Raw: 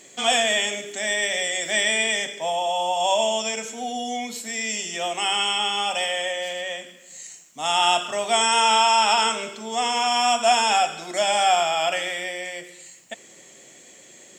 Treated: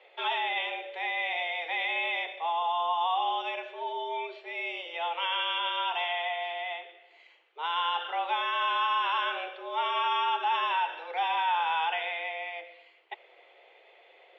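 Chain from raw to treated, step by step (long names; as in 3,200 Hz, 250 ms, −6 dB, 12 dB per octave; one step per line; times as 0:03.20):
brickwall limiter −14 dBFS, peak gain reduction 6.5 dB
single-sideband voice off tune +160 Hz 220–3,100 Hz
level −4.5 dB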